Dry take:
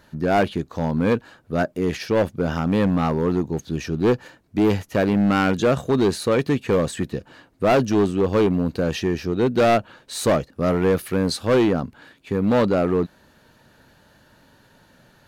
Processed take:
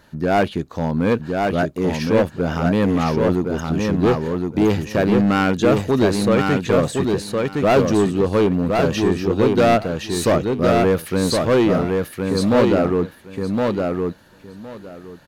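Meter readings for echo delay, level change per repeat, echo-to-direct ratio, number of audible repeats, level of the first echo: 1064 ms, -15.5 dB, -3.5 dB, 3, -3.5 dB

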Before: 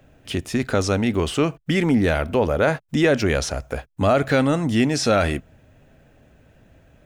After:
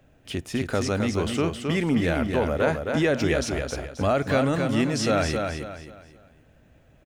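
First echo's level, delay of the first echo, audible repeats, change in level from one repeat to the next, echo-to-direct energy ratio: -5.0 dB, 266 ms, 4, -9.5 dB, -4.5 dB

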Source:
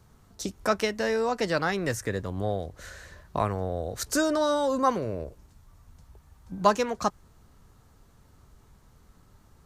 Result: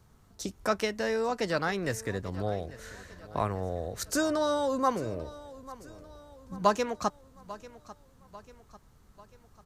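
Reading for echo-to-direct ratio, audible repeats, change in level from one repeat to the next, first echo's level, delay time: -17.0 dB, 3, -6.0 dB, -18.0 dB, 844 ms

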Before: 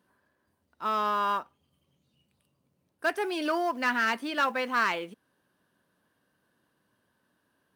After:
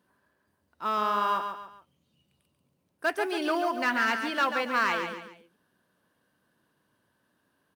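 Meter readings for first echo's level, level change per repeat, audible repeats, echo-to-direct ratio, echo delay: -7.0 dB, -8.5 dB, 3, -6.5 dB, 140 ms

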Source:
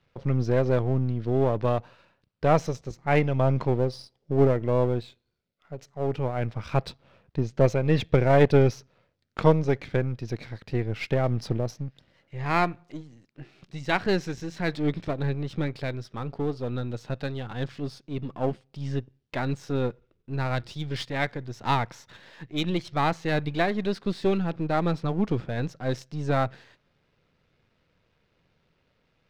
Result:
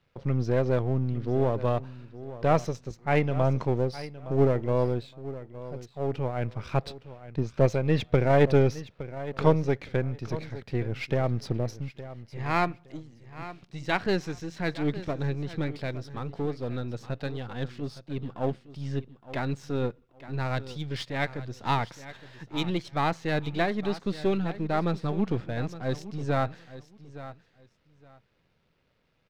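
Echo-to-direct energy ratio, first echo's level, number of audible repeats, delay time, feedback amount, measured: -15.0 dB, -15.0 dB, 2, 865 ms, 20%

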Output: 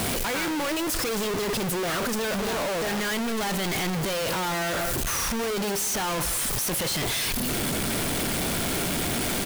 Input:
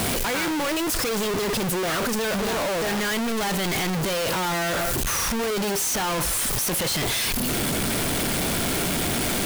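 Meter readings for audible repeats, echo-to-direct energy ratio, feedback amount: 1, -17.0 dB, no regular repeats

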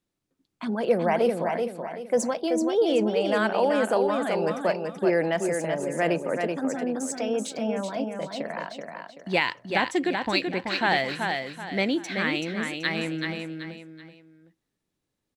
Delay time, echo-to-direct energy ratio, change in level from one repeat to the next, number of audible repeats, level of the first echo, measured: 381 ms, -4.5 dB, -9.5 dB, 3, -5.0 dB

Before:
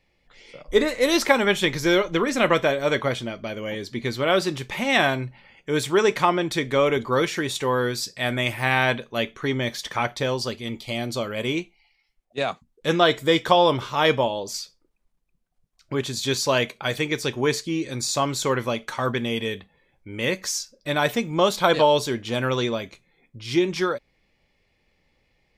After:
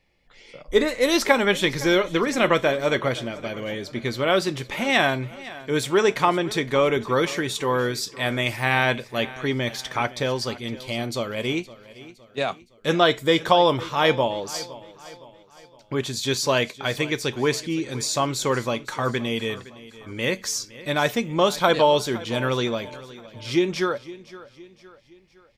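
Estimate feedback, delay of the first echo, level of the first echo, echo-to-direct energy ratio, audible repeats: 46%, 514 ms, -18.0 dB, -17.0 dB, 3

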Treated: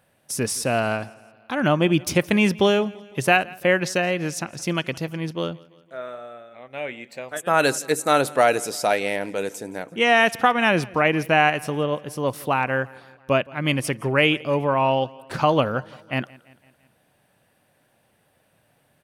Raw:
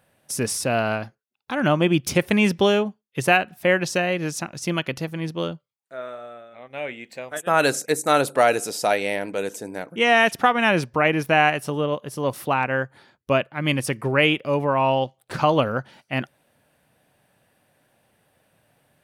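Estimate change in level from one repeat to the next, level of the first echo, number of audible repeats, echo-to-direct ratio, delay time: -5.0 dB, -23.0 dB, 3, -21.5 dB, 169 ms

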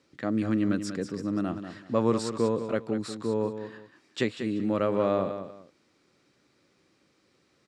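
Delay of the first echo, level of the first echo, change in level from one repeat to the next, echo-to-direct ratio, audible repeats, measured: 191 ms, -9.5 dB, -12.0 dB, -9.0 dB, 2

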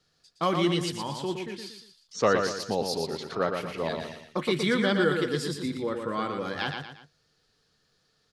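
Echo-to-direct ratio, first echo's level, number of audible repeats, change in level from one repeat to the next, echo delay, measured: -5.0 dB, -5.5 dB, 3, -8.0 dB, 117 ms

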